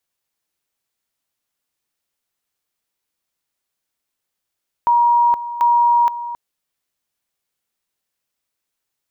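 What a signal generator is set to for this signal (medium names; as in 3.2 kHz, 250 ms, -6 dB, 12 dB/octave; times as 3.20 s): two-level tone 951 Hz -10.5 dBFS, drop 13.5 dB, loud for 0.47 s, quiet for 0.27 s, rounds 2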